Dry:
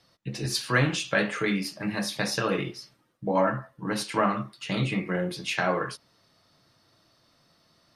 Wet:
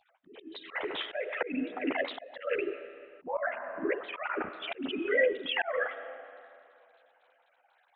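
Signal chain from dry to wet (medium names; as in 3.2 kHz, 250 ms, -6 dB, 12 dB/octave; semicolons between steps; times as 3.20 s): formants replaced by sine waves; formant shift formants +3 st; chorus voices 4, 0.7 Hz, delay 11 ms, depth 1.3 ms; treble shelf 2.7 kHz -8.5 dB; on a send at -18 dB: reverberation RT60 2.5 s, pre-delay 56 ms; on the sum: slow attack 385 ms; trim +8.5 dB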